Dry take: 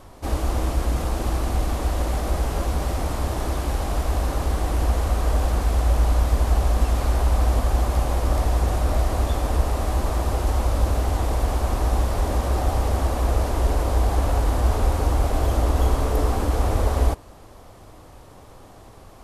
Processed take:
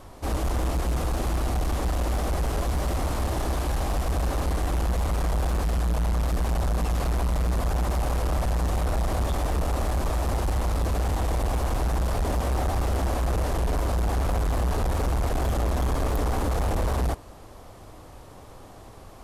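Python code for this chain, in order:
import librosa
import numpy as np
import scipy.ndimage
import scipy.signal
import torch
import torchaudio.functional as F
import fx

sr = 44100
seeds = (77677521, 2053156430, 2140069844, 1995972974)

y = np.clip(x, -10.0 ** (-21.5 / 20.0), 10.0 ** (-21.5 / 20.0))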